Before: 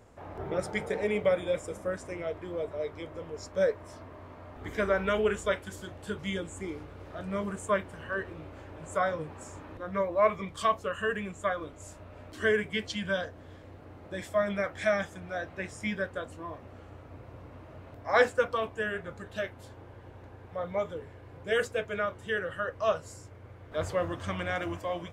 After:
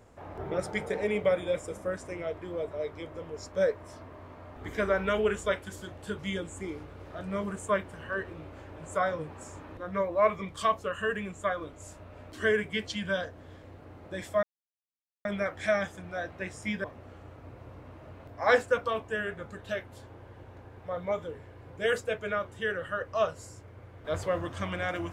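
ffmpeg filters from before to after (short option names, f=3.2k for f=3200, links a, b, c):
-filter_complex "[0:a]asplit=3[a][b][c];[a]atrim=end=14.43,asetpts=PTS-STARTPTS,afade=t=out:st=14.426:d=0.004:c=hsin,apad=pad_dur=0.82[d];[b]atrim=start=14.43:end=16.022,asetpts=PTS-STARTPTS,afade=t=in:d=0.004:c=hsin[e];[c]atrim=start=16.508[f];[d][e]concat=n=2:v=0:a=1[g];[g][f]acrossfade=d=0.004:c1=hsin:c2=hsin"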